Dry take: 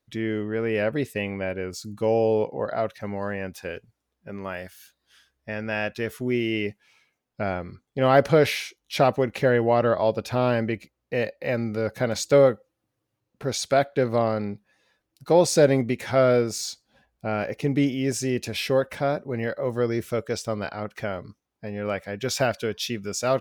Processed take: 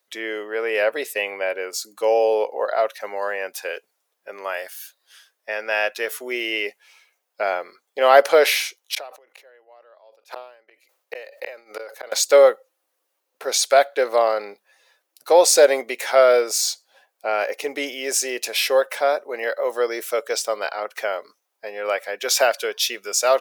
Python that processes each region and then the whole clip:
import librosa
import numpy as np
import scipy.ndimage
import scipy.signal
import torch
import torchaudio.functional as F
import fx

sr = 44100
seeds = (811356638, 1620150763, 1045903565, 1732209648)

y = fx.chain(x, sr, fx.highpass(hz=330.0, slope=12),
    fx.gate_flip(shuts_db=-21.0, range_db=-35),
    fx.sustainer(db_per_s=91.0), at=(8.81, 12.12))
y = scipy.signal.sosfilt(scipy.signal.butter(4, 480.0, 'highpass', fs=sr, output='sos'), y)
y = fx.high_shelf(y, sr, hz=8400.0, db=9.5)
y = y * librosa.db_to_amplitude(6.5)